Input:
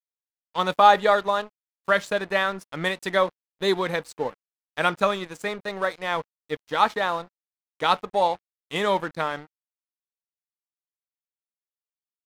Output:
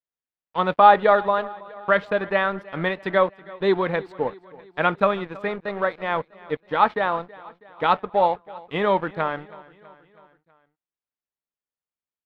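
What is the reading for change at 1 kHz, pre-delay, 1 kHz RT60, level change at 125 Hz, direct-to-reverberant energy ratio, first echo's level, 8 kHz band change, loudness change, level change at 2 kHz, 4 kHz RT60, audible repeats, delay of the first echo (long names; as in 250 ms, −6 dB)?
+2.0 dB, no reverb audible, no reverb audible, +3.5 dB, no reverb audible, −21.0 dB, below −20 dB, +2.0 dB, +0.5 dB, no reverb audible, 3, 324 ms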